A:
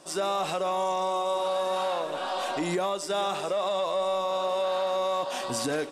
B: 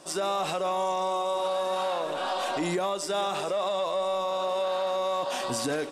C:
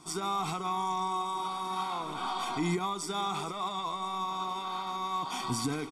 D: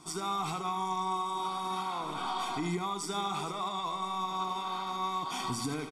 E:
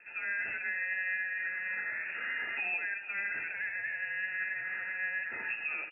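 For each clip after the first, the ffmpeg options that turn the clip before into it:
-af "alimiter=limit=-23dB:level=0:latency=1:release=53,volume=2dB"
-af "lowshelf=f=260:g=6.5,aecho=1:1:0.9:0.95,volume=-6dB"
-af "alimiter=level_in=1dB:limit=-24dB:level=0:latency=1:release=258,volume=-1dB,aecho=1:1:80:0.316"
-af "lowpass=f=2.4k:t=q:w=0.5098,lowpass=f=2.4k:t=q:w=0.6013,lowpass=f=2.4k:t=q:w=0.9,lowpass=f=2.4k:t=q:w=2.563,afreqshift=-2800,volume=-1.5dB"

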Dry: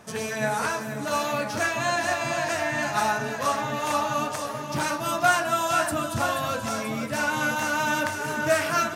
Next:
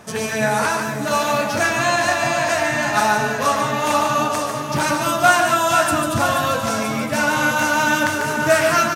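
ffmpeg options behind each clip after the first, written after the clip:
-af "aecho=1:1:145:0.501,volume=6.5dB"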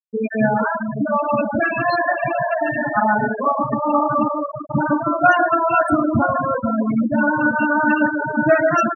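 -af "afftfilt=real='re*gte(hypot(re,im),0.316)':imag='im*gte(hypot(re,im),0.316)':win_size=1024:overlap=0.75,equalizer=f=250:t=o:w=1.2:g=9"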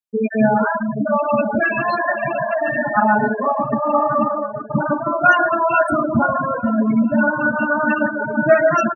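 -filter_complex "[0:a]aecho=1:1:4.9:0.46,asplit=2[a][b];[b]adelay=1341,volume=-18dB,highshelf=f=4k:g=-30.2[c];[a][c]amix=inputs=2:normalize=0"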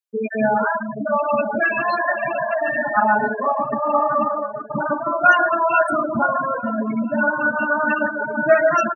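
-af "highpass=f=430:p=1"

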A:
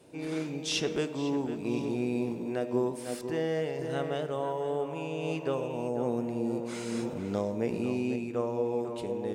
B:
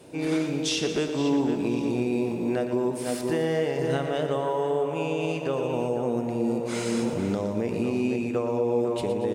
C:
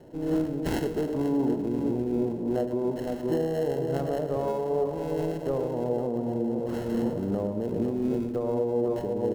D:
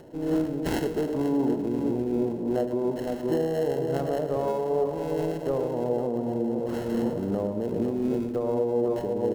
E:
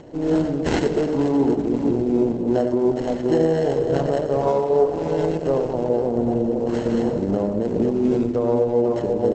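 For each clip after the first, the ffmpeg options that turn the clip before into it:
-af "alimiter=level_in=1dB:limit=-24dB:level=0:latency=1:release=259,volume=-1dB,aecho=1:1:117|234|351|468|585|702|819:0.316|0.187|0.11|0.0649|0.0383|0.0226|0.0133,volume=8dB"
-filter_complex "[0:a]tremolo=f=2.7:d=0.3,acrossover=split=730|1000[a][b][c];[c]acrusher=samples=37:mix=1:aa=0.000001[d];[a][b][d]amix=inputs=3:normalize=0"
-af "acompressor=mode=upward:threshold=-48dB:ratio=2.5,lowshelf=f=190:g=-4,volume=2dB"
-filter_complex "[0:a]asplit=2[a][b];[b]adelay=93.29,volume=-10dB,highshelf=f=4k:g=-2.1[c];[a][c]amix=inputs=2:normalize=0,volume=7dB" -ar 48000 -c:a libopus -b:a 12k

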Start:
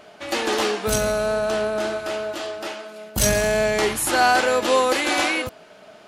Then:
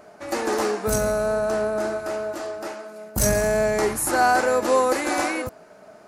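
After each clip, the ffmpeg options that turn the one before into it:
-af "equalizer=f=3.2k:w=1.5:g=-15"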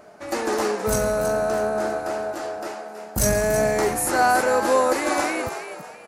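-filter_complex "[0:a]asplit=5[a][b][c][d][e];[b]adelay=324,afreqshift=81,volume=-9.5dB[f];[c]adelay=648,afreqshift=162,volume=-18.9dB[g];[d]adelay=972,afreqshift=243,volume=-28.2dB[h];[e]adelay=1296,afreqshift=324,volume=-37.6dB[i];[a][f][g][h][i]amix=inputs=5:normalize=0"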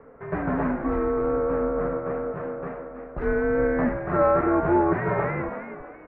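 -af "highpass=f=160:t=q:w=0.5412,highpass=f=160:t=q:w=1.307,lowpass=f=2.2k:t=q:w=0.5176,lowpass=f=2.2k:t=q:w=0.7071,lowpass=f=2.2k:t=q:w=1.932,afreqshift=-170,volume=-1.5dB"

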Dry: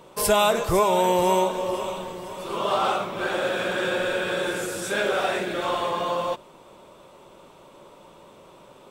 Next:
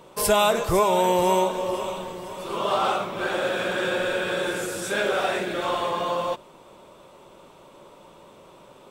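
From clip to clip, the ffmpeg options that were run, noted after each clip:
-af anull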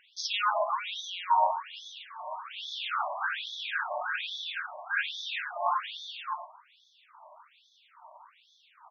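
-af "lowshelf=f=360:g=12,aecho=1:1:109:0.2,afftfilt=real='re*between(b*sr/1024,800*pow(4700/800,0.5+0.5*sin(2*PI*1.2*pts/sr))/1.41,800*pow(4700/800,0.5+0.5*sin(2*PI*1.2*pts/sr))*1.41)':imag='im*between(b*sr/1024,800*pow(4700/800,0.5+0.5*sin(2*PI*1.2*pts/sr))/1.41,800*pow(4700/800,0.5+0.5*sin(2*PI*1.2*pts/sr))*1.41)':win_size=1024:overlap=0.75"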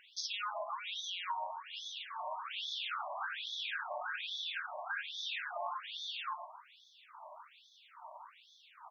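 -af "acompressor=threshold=-38dB:ratio=8,volume=1dB"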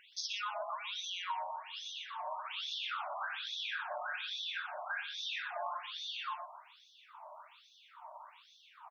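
-af "aecho=1:1:122:0.266"

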